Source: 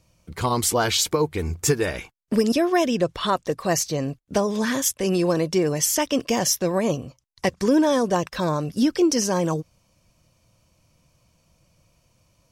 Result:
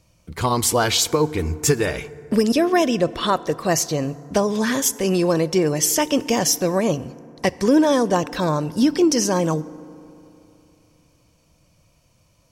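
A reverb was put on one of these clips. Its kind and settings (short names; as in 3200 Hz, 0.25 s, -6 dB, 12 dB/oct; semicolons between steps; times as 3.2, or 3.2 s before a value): FDN reverb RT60 3 s, high-frequency decay 0.4×, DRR 17.5 dB; gain +2.5 dB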